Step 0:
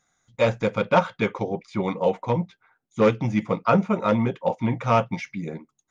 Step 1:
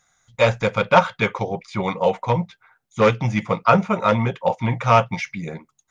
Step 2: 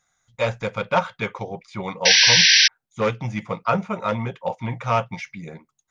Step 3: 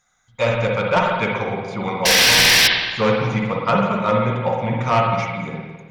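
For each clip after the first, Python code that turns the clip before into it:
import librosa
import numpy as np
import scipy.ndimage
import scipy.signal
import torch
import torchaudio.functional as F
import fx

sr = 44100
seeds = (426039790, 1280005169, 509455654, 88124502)

y1 = fx.peak_eq(x, sr, hz=290.0, db=-10.5, octaves=1.4)
y1 = y1 * librosa.db_to_amplitude(7.0)
y2 = fx.spec_paint(y1, sr, seeds[0], shape='noise', start_s=2.05, length_s=0.63, low_hz=1500.0, high_hz=6000.0, level_db=-8.0)
y2 = y2 * librosa.db_to_amplitude(-6.0)
y3 = fx.fold_sine(y2, sr, drive_db=10, ceiling_db=-1.0)
y3 = fx.rev_spring(y3, sr, rt60_s=1.4, pass_ms=(51, 55), chirp_ms=35, drr_db=-1.0)
y3 = y3 * librosa.db_to_amplitude(-10.5)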